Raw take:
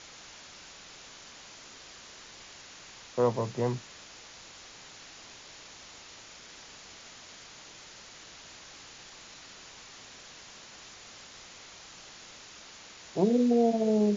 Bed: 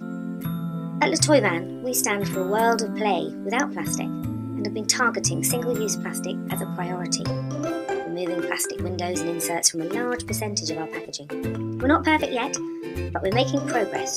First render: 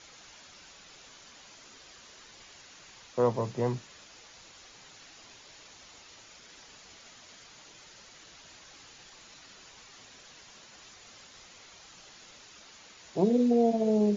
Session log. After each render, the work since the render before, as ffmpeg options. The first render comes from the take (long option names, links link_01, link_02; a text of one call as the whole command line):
ffmpeg -i in.wav -af "afftdn=noise_reduction=6:noise_floor=-50" out.wav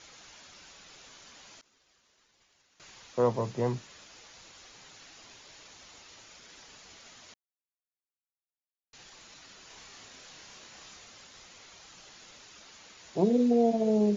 ffmpeg -i in.wav -filter_complex "[0:a]asettb=1/sr,asplit=3[link_01][link_02][link_03];[link_01]atrim=end=1.614[link_04];[link_02]atrim=start=1.61:end=2.8,asetpts=PTS-STARTPTS,afade=type=in:duration=0.004:curve=qsin,afade=type=out:start_time=1.186:duration=0.004:curve=qsin,agate=range=-33dB:threshold=-43dB:ratio=3:release=100:detection=peak[link_05];[link_03]atrim=start=2.796[link_06];[link_04][link_05]acrossfade=duration=0.004:curve1=hsin:curve2=qsin[link_07];[link_07][link_06]acrossfade=duration=0.004:curve1=qsin:curve2=hsin,asettb=1/sr,asplit=3[link_08][link_09][link_10];[link_08]atrim=end=9.674[link_11];[link_09]atrim=start=9.67:end=11.05,asetpts=PTS-STARTPTS,afade=type=in:duration=0.004:curve=qsin,afade=type=out:start_time=1.376:duration=0.004:curve=qsin,asplit=2[link_12][link_13];[link_13]adelay=30,volume=-2.5dB[link_14];[link_12][link_14]amix=inputs=2:normalize=0,atrim=end_sample=60858[link_15];[link_10]atrim=start=11.046[link_16];[link_11][link_15]acrossfade=duration=0.004:curve1=hsin:curve2=qsin[link_17];[link_17][link_16]acrossfade=duration=0.004:curve1=qsin:curve2=hsin,asplit=3[link_18][link_19][link_20];[link_18]atrim=end=7.34,asetpts=PTS-STARTPTS,afade=type=out:start_time=7.336:duration=0.004:curve=hsin[link_21];[link_19]atrim=start=7.34:end=8.93,asetpts=PTS-STARTPTS,volume=0[link_22];[link_20]atrim=start=8.93,asetpts=PTS-STARTPTS,afade=type=in:duration=0.004:curve=hsin[link_23];[link_21][link_22][link_23]concat=n=3:v=0:a=1" out.wav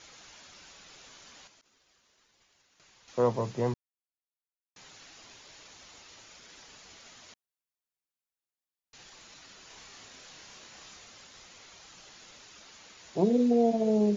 ffmpeg -i in.wav -filter_complex "[0:a]asettb=1/sr,asplit=3[link_01][link_02][link_03];[link_01]atrim=end=1.474[link_04];[link_02]atrim=start=1.47:end=3.08,asetpts=PTS-STARTPTS,afade=type=in:duration=0.004:curve=qsin,afade=type=out:start_time=1.606:duration=0.004:curve=qsin,acompressor=threshold=-59dB:ratio=4:attack=3.2:release=140:knee=1:detection=peak[link_05];[link_03]atrim=start=3.076[link_06];[link_04][link_05]acrossfade=duration=0.004:curve1=hsin:curve2=qsin[link_07];[link_07][link_06]acrossfade=duration=0.004:curve1=qsin:curve2=hsin,asplit=3[link_08][link_09][link_10];[link_08]atrim=end=3.74,asetpts=PTS-STARTPTS,afade=type=out:start_time=3.736:duration=0.004:curve=hsin[link_11];[link_09]atrim=start=3.74:end=4.76,asetpts=PTS-STARTPTS,volume=0[link_12];[link_10]atrim=start=4.76,asetpts=PTS-STARTPTS,afade=type=in:duration=0.004:curve=hsin[link_13];[link_11][link_12][link_13]concat=n=3:v=0:a=1" out.wav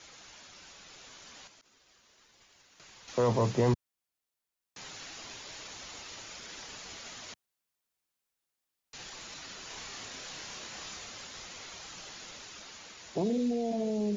ffmpeg -i in.wav -filter_complex "[0:a]acrossover=split=100|1800[link_01][link_02][link_03];[link_02]alimiter=level_in=1.5dB:limit=-24dB:level=0:latency=1:release=27,volume=-1.5dB[link_04];[link_01][link_04][link_03]amix=inputs=3:normalize=0,dynaudnorm=framelen=300:gausssize=13:maxgain=7dB" out.wav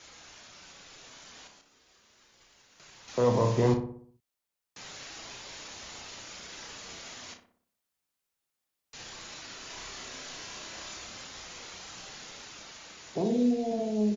ffmpeg -i in.wav -filter_complex "[0:a]asplit=2[link_01][link_02];[link_02]adelay=33,volume=-8dB[link_03];[link_01][link_03]amix=inputs=2:normalize=0,asplit=2[link_04][link_05];[link_05]adelay=61,lowpass=frequency=1600:poles=1,volume=-6.5dB,asplit=2[link_06][link_07];[link_07]adelay=61,lowpass=frequency=1600:poles=1,volume=0.53,asplit=2[link_08][link_09];[link_09]adelay=61,lowpass=frequency=1600:poles=1,volume=0.53,asplit=2[link_10][link_11];[link_11]adelay=61,lowpass=frequency=1600:poles=1,volume=0.53,asplit=2[link_12][link_13];[link_13]adelay=61,lowpass=frequency=1600:poles=1,volume=0.53,asplit=2[link_14][link_15];[link_15]adelay=61,lowpass=frequency=1600:poles=1,volume=0.53,asplit=2[link_16][link_17];[link_17]adelay=61,lowpass=frequency=1600:poles=1,volume=0.53[link_18];[link_06][link_08][link_10][link_12][link_14][link_16][link_18]amix=inputs=7:normalize=0[link_19];[link_04][link_19]amix=inputs=2:normalize=0" out.wav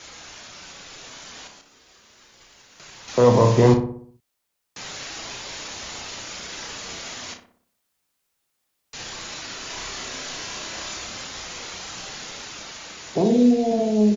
ffmpeg -i in.wav -af "volume=9.5dB" out.wav